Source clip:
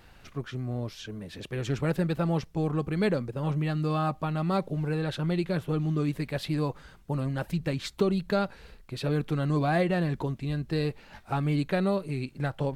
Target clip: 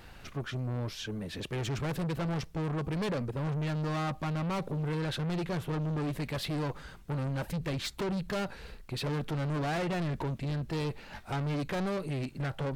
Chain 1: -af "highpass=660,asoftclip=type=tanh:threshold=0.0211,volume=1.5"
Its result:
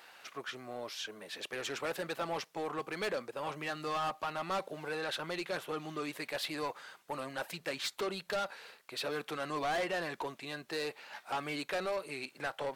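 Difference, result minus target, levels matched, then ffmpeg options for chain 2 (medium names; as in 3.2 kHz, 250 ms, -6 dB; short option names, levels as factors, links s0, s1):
500 Hz band +3.0 dB
-af "asoftclip=type=tanh:threshold=0.0211,volume=1.5"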